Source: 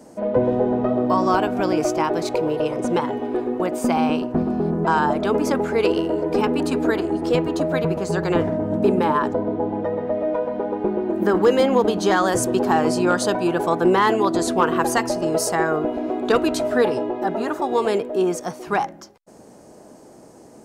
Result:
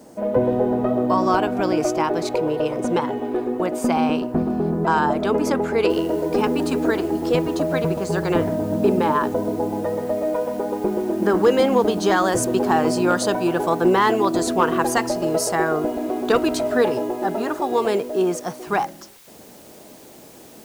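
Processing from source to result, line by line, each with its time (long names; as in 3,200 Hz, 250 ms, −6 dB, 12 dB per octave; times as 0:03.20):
0:05.90: noise floor change −63 dB −49 dB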